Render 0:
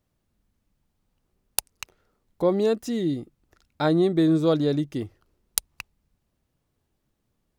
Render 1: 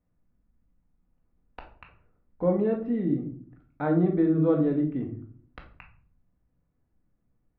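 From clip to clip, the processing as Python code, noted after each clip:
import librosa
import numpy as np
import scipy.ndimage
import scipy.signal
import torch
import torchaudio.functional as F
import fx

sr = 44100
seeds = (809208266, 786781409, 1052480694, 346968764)

y = scipy.signal.sosfilt(scipy.signal.cheby2(4, 60, 6800.0, 'lowpass', fs=sr, output='sos'), x)
y = fx.low_shelf(y, sr, hz=270.0, db=6.5)
y = fx.room_shoebox(y, sr, seeds[0], volume_m3=510.0, walls='furnished', distance_m=1.9)
y = F.gain(torch.from_numpy(y), -7.5).numpy()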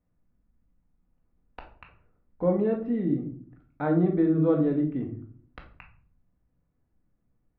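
y = x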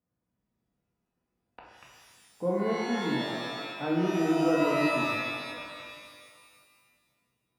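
y = scipy.signal.sosfilt(scipy.signal.butter(2, 120.0, 'highpass', fs=sr, output='sos'), x)
y = fx.rev_shimmer(y, sr, seeds[1], rt60_s=1.8, semitones=12, shimmer_db=-2, drr_db=1.0)
y = F.gain(torch.from_numpy(y), -6.0).numpy()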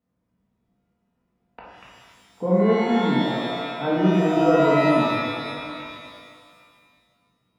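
y = fx.high_shelf(x, sr, hz=4600.0, db=-11.5)
y = y + 10.0 ** (-21.0 / 20.0) * np.pad(y, (int(795 * sr / 1000.0), 0))[:len(y)]
y = fx.room_shoebox(y, sr, seeds[2], volume_m3=410.0, walls='furnished', distance_m=1.6)
y = F.gain(torch.from_numpy(y), 6.0).numpy()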